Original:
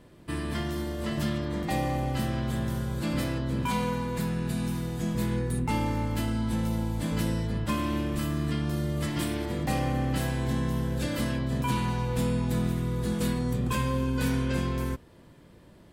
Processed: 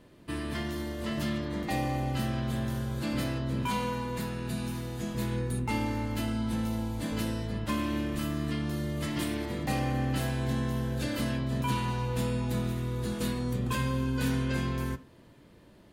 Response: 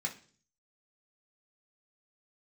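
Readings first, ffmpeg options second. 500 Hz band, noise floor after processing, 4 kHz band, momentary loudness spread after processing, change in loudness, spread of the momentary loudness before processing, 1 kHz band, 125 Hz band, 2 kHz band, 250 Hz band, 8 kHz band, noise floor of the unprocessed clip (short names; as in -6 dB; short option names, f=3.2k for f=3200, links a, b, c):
-2.5 dB, -55 dBFS, -1.0 dB, 4 LU, -2.5 dB, 3 LU, -2.0 dB, -2.5 dB, -1.0 dB, -2.5 dB, -2.5 dB, -53 dBFS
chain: -filter_complex "[0:a]asplit=2[a][b];[1:a]atrim=start_sample=2205[c];[b][c]afir=irnorm=-1:irlink=0,volume=-11.5dB[d];[a][d]amix=inputs=2:normalize=0"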